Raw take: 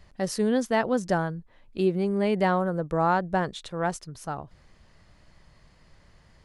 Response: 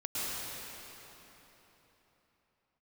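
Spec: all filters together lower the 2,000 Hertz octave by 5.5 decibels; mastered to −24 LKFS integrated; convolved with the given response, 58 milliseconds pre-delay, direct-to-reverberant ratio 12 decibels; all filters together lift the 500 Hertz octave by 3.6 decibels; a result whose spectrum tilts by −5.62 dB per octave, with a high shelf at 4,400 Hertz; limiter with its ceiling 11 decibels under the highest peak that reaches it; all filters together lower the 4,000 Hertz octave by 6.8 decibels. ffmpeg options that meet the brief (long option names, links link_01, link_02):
-filter_complex "[0:a]equalizer=frequency=500:width_type=o:gain=5,equalizer=frequency=2000:width_type=o:gain=-6.5,equalizer=frequency=4000:width_type=o:gain=-3.5,highshelf=frequency=4400:gain=-6,alimiter=limit=-21dB:level=0:latency=1,asplit=2[link_01][link_02];[1:a]atrim=start_sample=2205,adelay=58[link_03];[link_02][link_03]afir=irnorm=-1:irlink=0,volume=-18.5dB[link_04];[link_01][link_04]amix=inputs=2:normalize=0,volume=7dB"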